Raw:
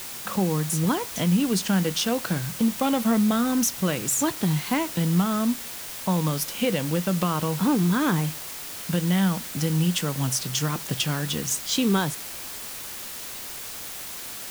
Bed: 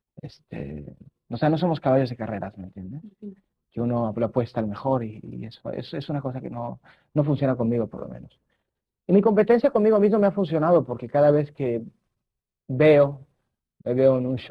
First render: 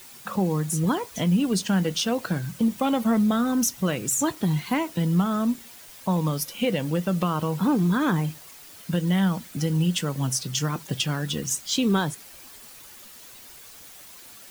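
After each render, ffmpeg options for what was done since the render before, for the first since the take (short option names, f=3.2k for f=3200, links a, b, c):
-af "afftdn=nr=11:nf=-36"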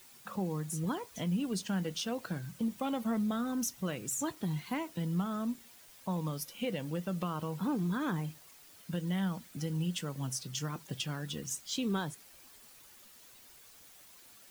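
-af "volume=-11dB"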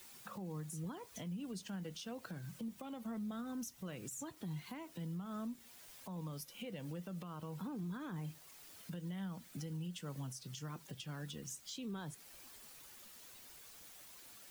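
-filter_complex "[0:a]acrossover=split=170[a][b];[b]acompressor=threshold=-39dB:ratio=2[c];[a][c]amix=inputs=2:normalize=0,alimiter=level_in=12.5dB:limit=-24dB:level=0:latency=1:release=380,volume=-12.5dB"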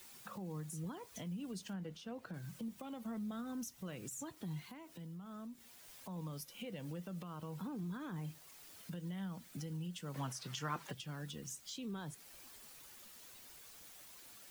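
-filter_complex "[0:a]asettb=1/sr,asplit=3[a][b][c];[a]atrim=end=1.734[d];[b]atrim=start=1.73:end=2.34,asetpts=PTS-STARTPTS,afade=t=in:d=0.004:c=qsin,afade=t=out:st=0.606:d=0.004:c=qsin,highshelf=f=3.5k:g=-11[e];[c]atrim=start=2.336[f];[d][e]acrossfade=d=0.004:c1=hsin:c2=qsin[g];[g][f]acrossfade=d=0.004:c1=qsin:c2=hsin,asettb=1/sr,asplit=3[h][i][j];[h]atrim=end=4.654[k];[i]atrim=start=4.65:end=5.85,asetpts=PTS-STARTPTS,afade=t=in:d=0.004:c=qsin,afade=t=out:st=1.196:d=0.004:c=qsin,acompressor=threshold=-56dB:ratio=1.5:attack=3.2:release=140:knee=1:detection=peak[l];[j]atrim=start=5.846[m];[k][l]acrossfade=d=0.004:c1=hsin:c2=qsin[n];[n][m]acrossfade=d=0.004:c1=qsin:c2=hsin,asettb=1/sr,asplit=3[o][p][q];[o]atrim=end=10.144[r];[p]atrim=start=10.14:end=10.93,asetpts=PTS-STARTPTS,afade=t=in:d=0.004:c=qsin,afade=t=out:st=0.786:d=0.004:c=qsin,equalizer=f=1.3k:w=0.41:g=13[s];[q]atrim=start=10.926[t];[r][s]acrossfade=d=0.004:c1=hsin:c2=qsin[u];[u][t]acrossfade=d=0.004:c1=qsin:c2=hsin"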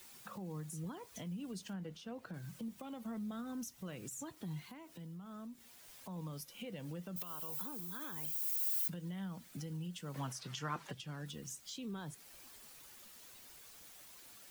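-filter_complex "[0:a]asettb=1/sr,asplit=3[a][b][c];[a]atrim=end=7.164[d];[b]atrim=start=7.16:end=8.88,asetpts=PTS-STARTPTS,afade=t=in:d=0.004:c=qsin,afade=t=out:st=1.716:d=0.004:c=qsin,aemphasis=mode=production:type=riaa[e];[c]atrim=start=8.876[f];[d][e]acrossfade=d=0.004:c1=hsin:c2=qsin[g];[g][f]acrossfade=d=0.004:c1=qsin:c2=hsin,asettb=1/sr,asplit=3[h][i][j];[h]atrim=end=10.404[k];[i]atrim=start=10.4:end=11.26,asetpts=PTS-STARTPTS,afade=t=in:d=0.004:c=qsin,afade=t=out:st=0.856:d=0.004:c=qsin,highshelf=f=12k:g=-9.5[l];[j]atrim=start=11.256[m];[k][l]acrossfade=d=0.004:c1=hsin:c2=qsin[n];[n][m]acrossfade=d=0.004:c1=qsin:c2=hsin"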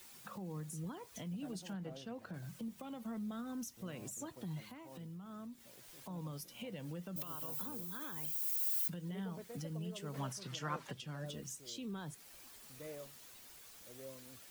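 -filter_complex "[1:a]volume=-33.5dB[a];[0:a][a]amix=inputs=2:normalize=0"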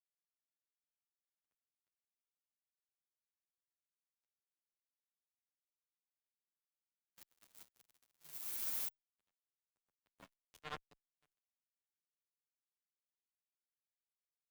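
-filter_complex "[0:a]acrusher=bits=4:mix=0:aa=0.5,asplit=2[a][b];[b]adelay=9,afreqshift=-0.37[c];[a][c]amix=inputs=2:normalize=1"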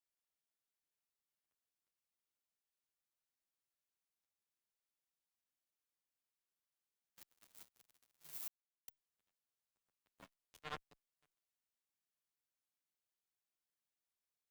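-filter_complex "[0:a]asplit=3[a][b][c];[a]atrim=end=8.48,asetpts=PTS-STARTPTS,afade=t=out:st=8.476:d=0.004:c=hsin[d];[b]atrim=start=8.48:end=8.88,asetpts=PTS-STARTPTS,volume=0[e];[c]atrim=start=8.88,asetpts=PTS-STARTPTS,afade=t=in:d=0.004:c=hsin[f];[d][e][f]concat=n=3:v=0:a=1"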